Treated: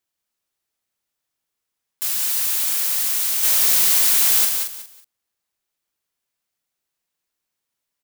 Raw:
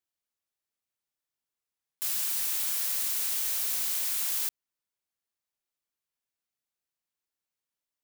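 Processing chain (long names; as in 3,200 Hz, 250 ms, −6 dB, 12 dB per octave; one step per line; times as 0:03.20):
0:03.43–0:04.45: leveller curve on the samples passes 2
repeating echo 185 ms, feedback 24%, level −5 dB
level +7.5 dB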